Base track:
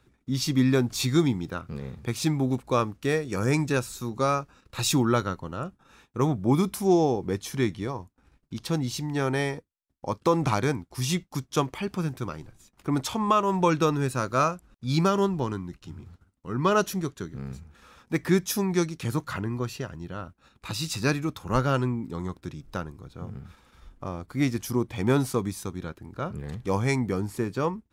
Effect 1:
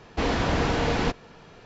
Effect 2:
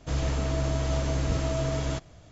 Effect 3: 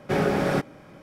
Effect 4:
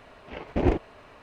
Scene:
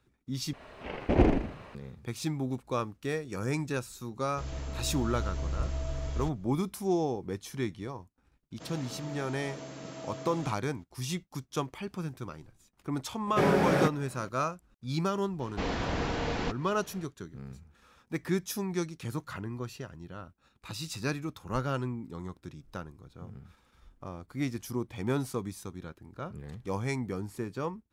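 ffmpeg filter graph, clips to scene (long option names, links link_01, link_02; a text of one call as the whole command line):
ffmpeg -i bed.wav -i cue0.wav -i cue1.wav -i cue2.wav -i cue3.wav -filter_complex "[2:a]asplit=2[link_01][link_02];[0:a]volume=-7.5dB[link_03];[4:a]asplit=6[link_04][link_05][link_06][link_07][link_08][link_09];[link_05]adelay=80,afreqshift=-46,volume=-3.5dB[link_10];[link_06]adelay=160,afreqshift=-92,volume=-10.8dB[link_11];[link_07]adelay=240,afreqshift=-138,volume=-18.2dB[link_12];[link_08]adelay=320,afreqshift=-184,volume=-25.5dB[link_13];[link_09]adelay=400,afreqshift=-230,volume=-32.8dB[link_14];[link_04][link_10][link_11][link_12][link_13][link_14]amix=inputs=6:normalize=0[link_15];[link_01]asubboost=boost=10.5:cutoff=69[link_16];[link_02]highpass=frequency=160:width=0.5412,highpass=frequency=160:width=1.3066[link_17];[3:a]highpass=50[link_18];[1:a]acompressor=mode=upward:threshold=-37dB:ratio=2.5:attack=3.2:release=140:knee=2.83:detection=peak[link_19];[link_03]asplit=2[link_20][link_21];[link_20]atrim=end=0.534[link_22];[link_15]atrim=end=1.22,asetpts=PTS-STARTPTS,volume=-1dB[link_23];[link_21]atrim=start=1.746[link_24];[link_16]atrim=end=2.31,asetpts=PTS-STARTPTS,volume=-11dB,afade=type=in:duration=0.004:curve=hsin,afade=type=out:start_time=2.306:duration=0.004:curve=hsin,adelay=4300[link_25];[link_17]atrim=end=2.31,asetpts=PTS-STARTPTS,volume=-11dB,afade=type=in:duration=0.004:curve=hsin,afade=type=out:start_time=2.306:duration=0.004:curve=hsin,adelay=8530[link_26];[link_18]atrim=end=1.02,asetpts=PTS-STARTPTS,volume=-2dB,afade=type=in:duration=0.004:curve=hsin,afade=type=out:start_time=1.016:duration=0.004:curve=hsin,adelay=13270[link_27];[link_19]atrim=end=1.65,asetpts=PTS-STARTPTS,volume=-7.5dB,afade=type=in:duration=0.004:curve=hsin,afade=type=out:start_time=1.646:duration=0.004:curve=hsin,adelay=679140S[link_28];[link_22][link_23]acrossfade=duration=0.004:curve1=hsin:curve2=hsin[link_29];[link_29][link_24]acrossfade=duration=0.004:curve1=hsin:curve2=hsin[link_30];[link_30][link_25][link_26][link_27][link_28]amix=inputs=5:normalize=0" out.wav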